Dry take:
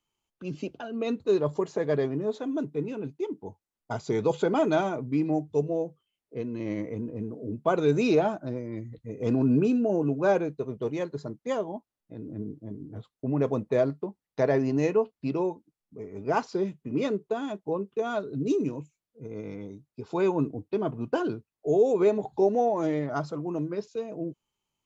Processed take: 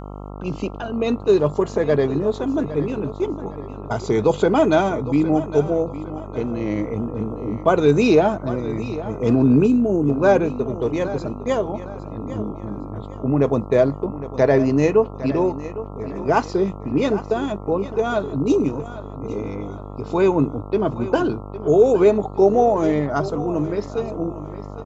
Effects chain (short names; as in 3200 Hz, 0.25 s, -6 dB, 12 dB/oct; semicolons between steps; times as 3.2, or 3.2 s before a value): buzz 50 Hz, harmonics 27, -42 dBFS -4 dB/oct; feedback echo 0.809 s, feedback 35%, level -14.5 dB; spectral gain 9.67–10.1, 450–6300 Hz -7 dB; gain +8 dB